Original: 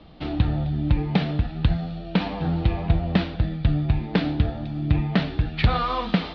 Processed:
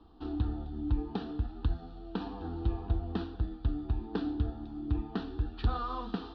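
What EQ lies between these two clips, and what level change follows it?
dynamic bell 970 Hz, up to -5 dB, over -44 dBFS, Q 2.3; treble shelf 3.1 kHz -9.5 dB; static phaser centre 580 Hz, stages 6; -6.0 dB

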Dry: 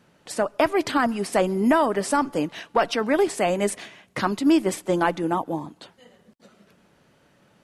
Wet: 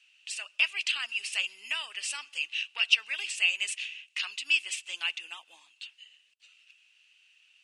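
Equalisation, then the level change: resonant high-pass 2.7 kHz, resonance Q 13; steep low-pass 9 kHz 36 dB/octave; treble shelf 5 kHz +9.5 dB; -9.0 dB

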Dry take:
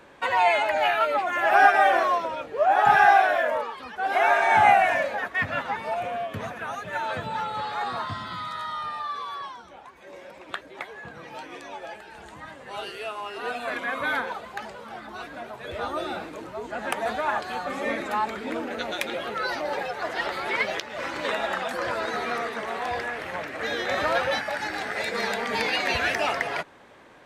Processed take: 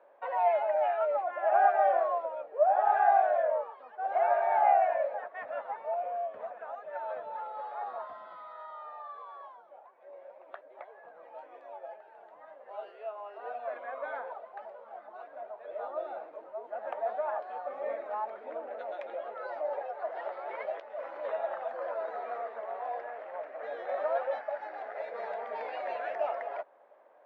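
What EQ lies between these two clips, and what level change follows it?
ladder band-pass 690 Hz, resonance 60%; +1.0 dB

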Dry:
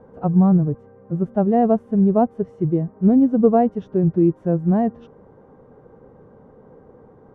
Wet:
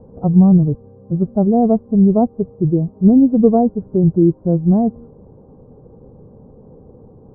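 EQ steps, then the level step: Bessel low-pass 670 Hz, order 8; dynamic bell 130 Hz, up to -3 dB, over -29 dBFS, Q 0.96; bass shelf 180 Hz +9.5 dB; +2.5 dB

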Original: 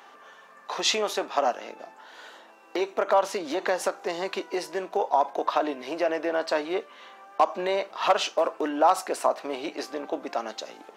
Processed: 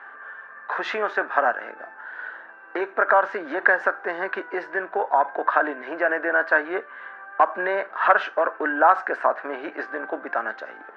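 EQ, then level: high-pass 220 Hz 12 dB/octave; resonant low-pass 1.6 kHz, resonance Q 8.3; 0.0 dB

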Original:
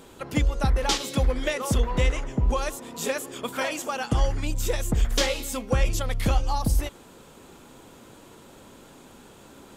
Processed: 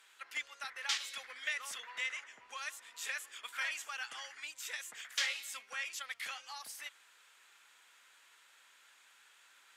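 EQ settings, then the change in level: band-pass filter 1.8 kHz, Q 2; differentiator; +8.0 dB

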